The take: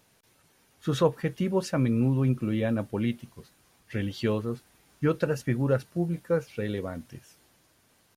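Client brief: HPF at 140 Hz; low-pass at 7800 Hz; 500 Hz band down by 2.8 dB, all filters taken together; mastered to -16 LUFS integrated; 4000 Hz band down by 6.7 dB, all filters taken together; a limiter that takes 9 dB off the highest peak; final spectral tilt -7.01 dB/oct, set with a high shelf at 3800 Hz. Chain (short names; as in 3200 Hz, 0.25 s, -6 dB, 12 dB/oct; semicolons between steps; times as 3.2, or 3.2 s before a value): HPF 140 Hz; LPF 7800 Hz; bell 500 Hz -3 dB; high shelf 3800 Hz -6 dB; bell 4000 Hz -4.5 dB; gain +16.5 dB; limiter -4 dBFS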